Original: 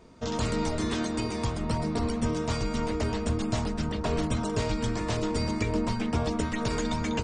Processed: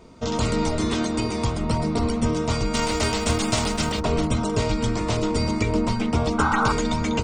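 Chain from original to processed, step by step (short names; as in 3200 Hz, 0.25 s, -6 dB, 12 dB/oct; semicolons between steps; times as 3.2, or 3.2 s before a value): 2.73–3.99 spectral whitening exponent 0.6; notch 1700 Hz, Q 8; 6.38–6.73 painted sound noise 760–1600 Hz -28 dBFS; gain +5.5 dB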